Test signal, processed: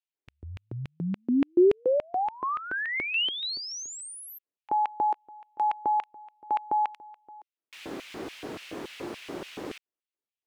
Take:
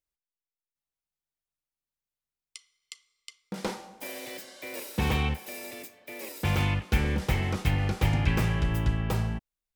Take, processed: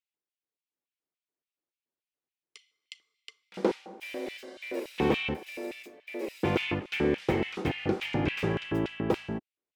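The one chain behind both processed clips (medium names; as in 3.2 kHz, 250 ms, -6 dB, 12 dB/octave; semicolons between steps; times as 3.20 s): RIAA curve playback; LFO high-pass square 3.5 Hz 350–2600 Hz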